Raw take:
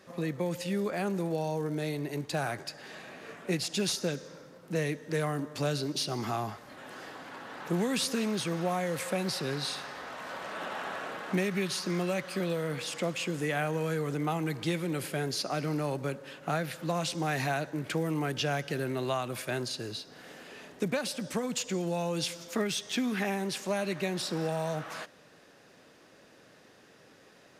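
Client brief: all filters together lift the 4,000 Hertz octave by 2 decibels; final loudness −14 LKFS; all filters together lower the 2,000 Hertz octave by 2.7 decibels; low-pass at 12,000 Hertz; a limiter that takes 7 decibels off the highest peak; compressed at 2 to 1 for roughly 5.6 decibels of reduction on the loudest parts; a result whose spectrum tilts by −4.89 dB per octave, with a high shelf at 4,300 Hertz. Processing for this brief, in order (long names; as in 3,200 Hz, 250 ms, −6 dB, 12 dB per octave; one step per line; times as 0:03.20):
low-pass filter 12,000 Hz
parametric band 2,000 Hz −4 dB
parametric band 4,000 Hz +7.5 dB
high-shelf EQ 4,300 Hz −7.5 dB
downward compressor 2 to 1, threshold −36 dBFS
level +24.5 dB
brickwall limiter −4 dBFS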